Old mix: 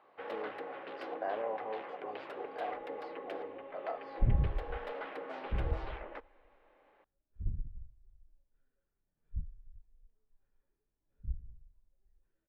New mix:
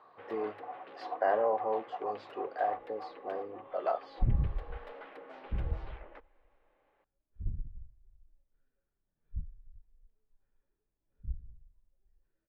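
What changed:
speech +8.5 dB; first sound -6.5 dB

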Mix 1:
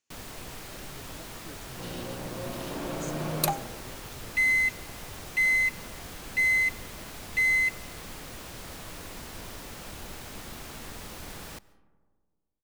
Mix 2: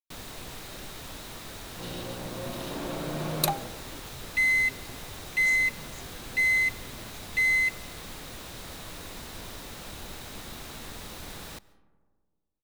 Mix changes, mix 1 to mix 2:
speech: entry +2.45 s; master: add bell 3800 Hz +6 dB 0.23 oct

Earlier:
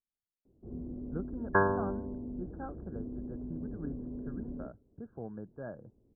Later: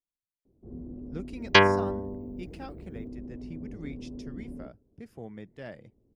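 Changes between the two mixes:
second sound +6.5 dB; master: remove brick-wall FIR low-pass 1700 Hz

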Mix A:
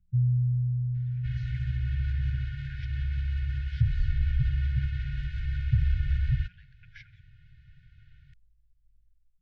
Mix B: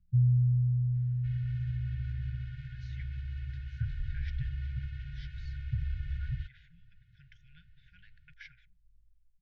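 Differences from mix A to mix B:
speech: entry +1.45 s; second sound -9.0 dB

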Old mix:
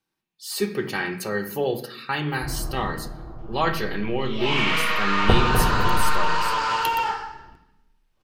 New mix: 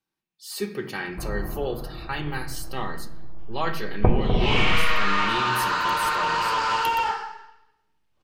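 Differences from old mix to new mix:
speech -4.5 dB; first sound: entry -1.25 s

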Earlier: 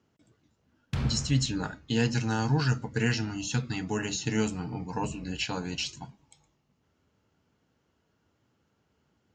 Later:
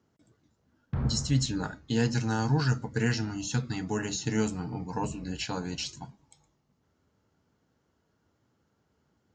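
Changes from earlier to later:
background: add LPF 1400 Hz 12 dB/oct; master: add bell 2700 Hz -6 dB 0.66 oct

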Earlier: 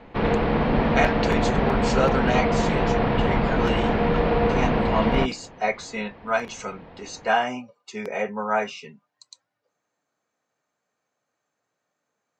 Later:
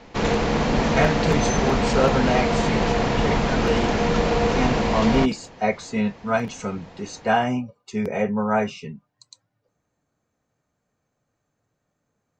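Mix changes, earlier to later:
speech: remove weighting filter A; background: remove Bessel low-pass 2400 Hz, order 8

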